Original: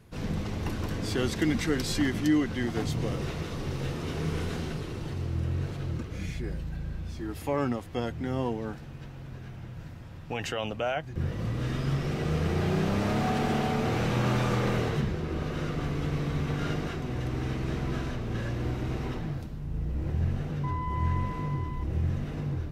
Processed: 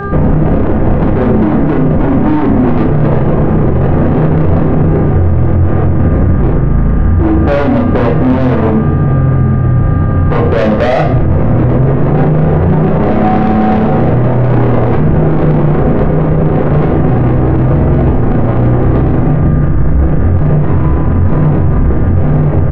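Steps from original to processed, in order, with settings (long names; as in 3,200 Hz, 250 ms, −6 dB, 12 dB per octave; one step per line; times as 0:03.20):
Butterworth low-pass 760 Hz 36 dB per octave
in parallel at +3 dB: compressor whose output falls as the input rises −31 dBFS, ratio −0.5
on the sum: asymmetric clip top −26 dBFS
hum with harmonics 400 Hz, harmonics 4, −45 dBFS 0 dB per octave
soft clipping −29 dBFS, distortion −9 dB
double-tracking delay 32 ms −4 dB
on a send at −1.5 dB: convolution reverb RT60 0.65 s, pre-delay 5 ms
on the sum: boost into a limiter +24.5 dB
level −1 dB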